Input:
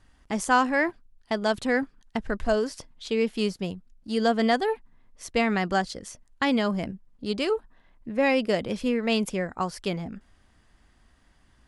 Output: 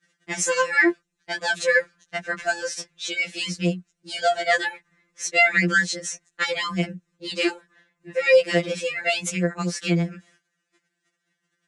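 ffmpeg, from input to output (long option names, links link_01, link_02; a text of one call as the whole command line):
ffmpeg -i in.wav -filter_complex "[0:a]agate=range=-20dB:threshold=-55dB:ratio=16:detection=peak,equalizer=frequency=870:width=0.95:gain=-7.5,asplit=2[link_01][link_02];[link_02]alimiter=limit=-21.5dB:level=0:latency=1,volume=0dB[link_03];[link_01][link_03]amix=inputs=2:normalize=0,highpass=210,equalizer=frequency=290:width_type=q:width=4:gain=-6,equalizer=frequency=430:width_type=q:width=4:gain=6,equalizer=frequency=920:width_type=q:width=4:gain=-5,equalizer=frequency=1600:width_type=q:width=4:gain=3,equalizer=frequency=3200:width_type=q:width=4:gain=-8,equalizer=frequency=4700:width_type=q:width=4:gain=-9,lowpass=frequency=7800:width=0.5412,lowpass=frequency=7800:width=1.3066,acrossover=split=470|1900[link_04][link_05][link_06];[link_06]acontrast=84[link_07];[link_04][link_05][link_07]amix=inputs=3:normalize=0,afftfilt=real='re*2.83*eq(mod(b,8),0)':imag='im*2.83*eq(mod(b,8),0)':win_size=2048:overlap=0.75,volume=4.5dB" out.wav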